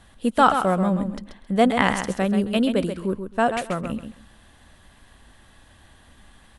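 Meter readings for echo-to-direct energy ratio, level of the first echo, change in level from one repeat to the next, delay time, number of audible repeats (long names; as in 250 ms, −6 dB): −8.0 dB, −8.0 dB, −15.0 dB, 133 ms, 2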